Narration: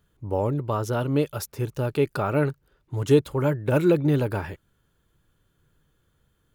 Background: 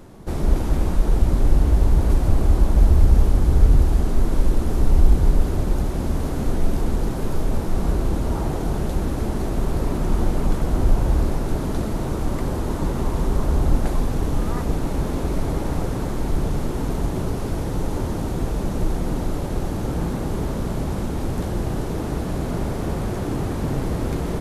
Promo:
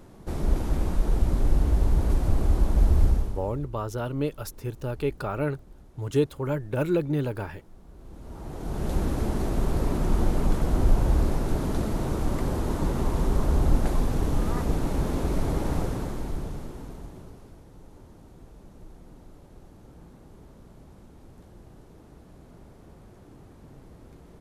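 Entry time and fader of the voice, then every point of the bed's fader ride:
3.05 s, -5.0 dB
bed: 3.07 s -5.5 dB
3.70 s -29 dB
7.88 s -29 dB
8.93 s -3 dB
15.78 s -3 dB
17.64 s -25 dB

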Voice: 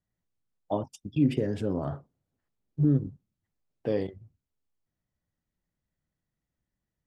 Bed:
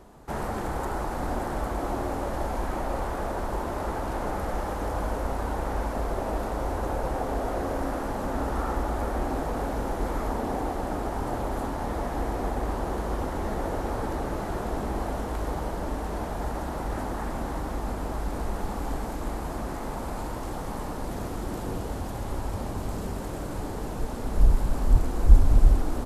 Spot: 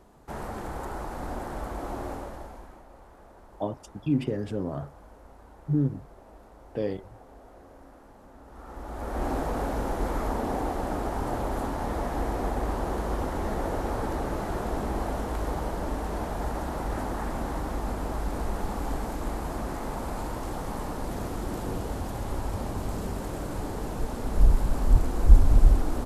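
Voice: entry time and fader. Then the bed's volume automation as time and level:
2.90 s, -1.5 dB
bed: 2.12 s -5 dB
2.86 s -21.5 dB
8.44 s -21.5 dB
9.26 s 0 dB

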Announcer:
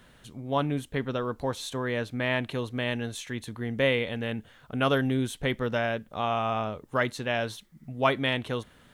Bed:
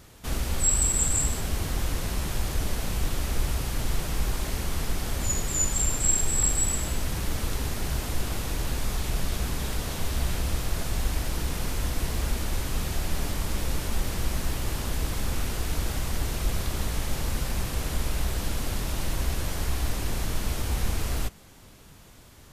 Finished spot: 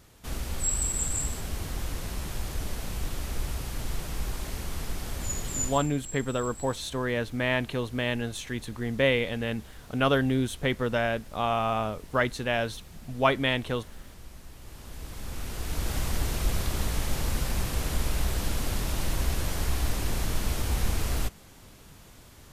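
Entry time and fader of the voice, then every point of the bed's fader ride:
5.20 s, +1.0 dB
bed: 5.66 s -5 dB
5.91 s -18.5 dB
14.51 s -18.5 dB
15.98 s 0 dB

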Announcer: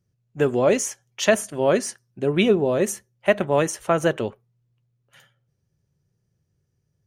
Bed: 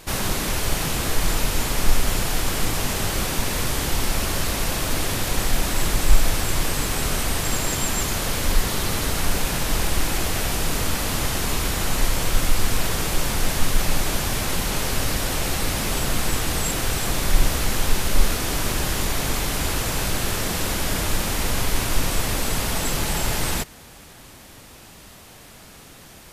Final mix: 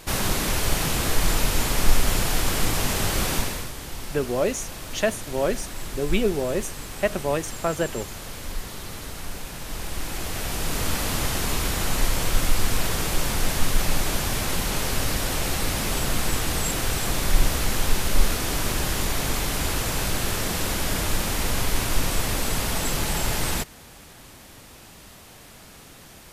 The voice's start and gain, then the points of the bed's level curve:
3.75 s, -5.0 dB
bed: 3.37 s 0 dB
3.73 s -12 dB
9.54 s -12 dB
10.92 s -1.5 dB

